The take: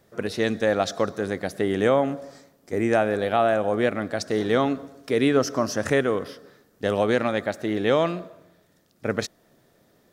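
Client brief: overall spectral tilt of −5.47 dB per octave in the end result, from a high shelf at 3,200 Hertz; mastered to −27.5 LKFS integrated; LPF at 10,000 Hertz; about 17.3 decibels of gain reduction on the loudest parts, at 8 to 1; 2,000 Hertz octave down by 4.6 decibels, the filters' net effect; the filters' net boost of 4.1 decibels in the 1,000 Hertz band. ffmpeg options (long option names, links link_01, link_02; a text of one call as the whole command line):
ffmpeg -i in.wav -af "lowpass=10000,equalizer=frequency=1000:width_type=o:gain=8.5,equalizer=frequency=2000:width_type=o:gain=-8,highshelf=frequency=3200:gain=-4.5,acompressor=threshold=-32dB:ratio=8,volume=9.5dB" out.wav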